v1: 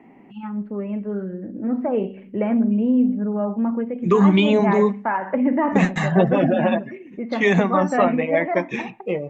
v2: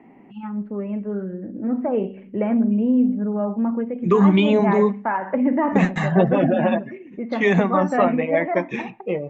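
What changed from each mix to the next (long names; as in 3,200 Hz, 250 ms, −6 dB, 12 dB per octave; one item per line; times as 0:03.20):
master: add high-shelf EQ 4,000 Hz −7 dB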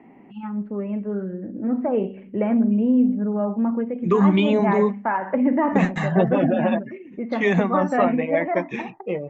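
second voice: send off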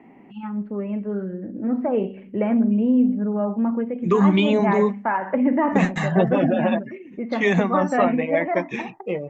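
master: add high-shelf EQ 4,000 Hz +7 dB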